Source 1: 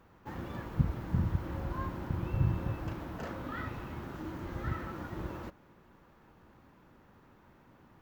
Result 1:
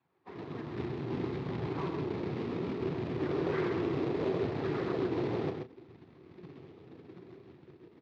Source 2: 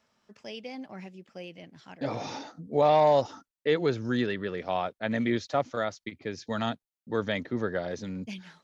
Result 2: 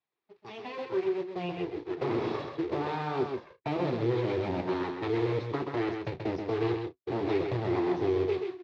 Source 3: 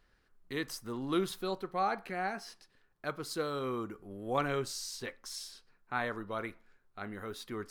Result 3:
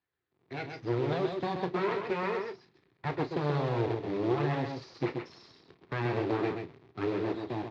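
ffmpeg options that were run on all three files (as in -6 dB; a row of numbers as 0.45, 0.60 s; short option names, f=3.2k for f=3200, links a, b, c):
-filter_complex "[0:a]afftdn=nr=12:nf=-44,asubboost=boost=10.5:cutoff=240,dynaudnorm=f=200:g=7:m=10dB,alimiter=limit=-12.5dB:level=0:latency=1:release=15,acrossover=split=260|2800[a][b][c];[a]acompressor=threshold=-28dB:ratio=4[d];[b]acompressor=threshold=-26dB:ratio=4[e];[c]acompressor=threshold=-45dB:ratio=4[f];[d][e][f]amix=inputs=3:normalize=0,aresample=16000,aeval=exprs='abs(val(0))':c=same,aresample=44100,flanger=delay=1.1:depth=8.3:regen=-42:speed=0.66:shape=sinusoidal,acrusher=bits=4:mode=log:mix=0:aa=0.000001,highpass=f=100:w=0.5412,highpass=f=100:w=1.3066,equalizer=f=100:t=q:w=4:g=-3,equalizer=f=210:t=q:w=4:g=-8,equalizer=f=370:t=q:w=4:g=8,equalizer=f=580:t=q:w=4:g=-5,equalizer=f=1.5k:t=q:w=4:g=-5,equalizer=f=3k:t=q:w=4:g=-5,lowpass=f=3.8k:w=0.5412,lowpass=f=3.8k:w=1.3066,asplit=2[g][h];[h]adelay=34,volume=-12dB[i];[g][i]amix=inputs=2:normalize=0,asplit=2[j][k];[k]aecho=0:1:131:0.531[l];[j][l]amix=inputs=2:normalize=0,volume=2.5dB"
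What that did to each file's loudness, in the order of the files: +2.5, -2.5, +4.5 LU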